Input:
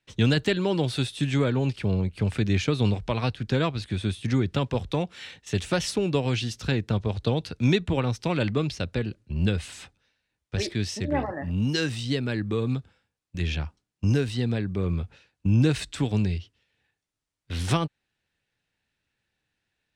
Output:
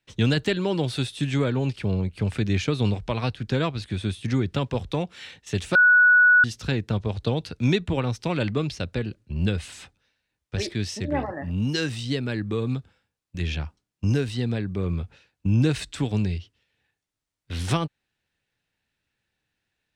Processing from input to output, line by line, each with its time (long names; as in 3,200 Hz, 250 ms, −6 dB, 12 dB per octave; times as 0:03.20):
0:05.75–0:06.44: beep over 1,470 Hz −12 dBFS